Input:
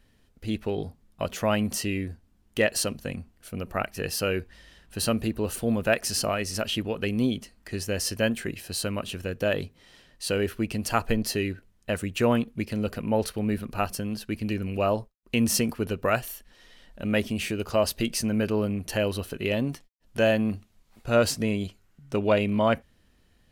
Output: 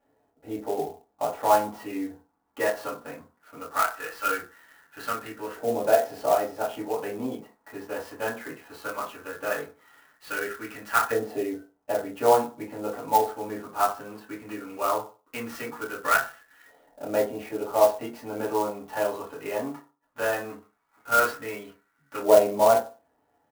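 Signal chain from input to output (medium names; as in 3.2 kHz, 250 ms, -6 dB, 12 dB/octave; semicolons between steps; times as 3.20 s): 3.79–4.26 s: frequency weighting A; LFO band-pass saw up 0.18 Hz 660–1600 Hz; doubling 25 ms -6.5 dB; reverberation RT60 0.35 s, pre-delay 4 ms, DRR -7 dB; sampling jitter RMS 0.031 ms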